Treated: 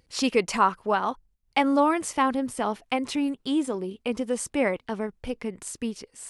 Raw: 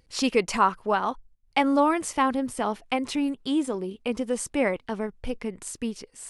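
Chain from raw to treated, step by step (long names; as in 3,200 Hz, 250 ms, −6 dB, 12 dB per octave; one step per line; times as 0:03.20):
high-pass filter 43 Hz 6 dB per octave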